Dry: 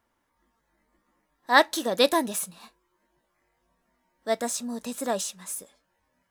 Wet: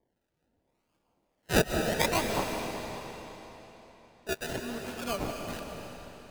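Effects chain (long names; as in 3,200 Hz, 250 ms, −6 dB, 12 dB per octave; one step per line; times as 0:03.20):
high-pass filter 410 Hz 6 dB per octave
sample-and-hold swept by an LFO 32×, swing 60% 0.75 Hz
two-band tremolo in antiphase 1.7 Hz, crossover 1,100 Hz
on a send: convolution reverb RT60 3.8 s, pre-delay 110 ms, DRR 2.5 dB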